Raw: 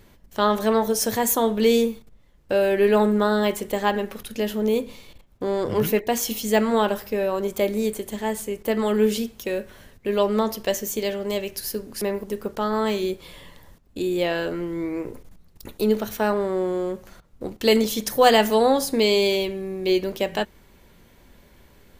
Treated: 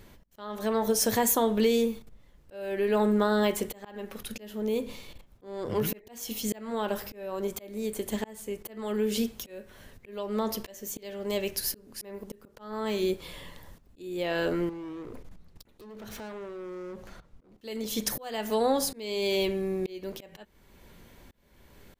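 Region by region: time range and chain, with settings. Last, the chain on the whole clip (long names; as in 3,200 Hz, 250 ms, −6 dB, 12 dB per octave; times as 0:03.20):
0:14.69–0:17.58: high-shelf EQ 8,300 Hz −11.5 dB + downward compressor 5 to 1, threshold −34 dBFS + hard clipping −37 dBFS
whole clip: downward compressor 4 to 1, threshold −21 dBFS; volume swells 528 ms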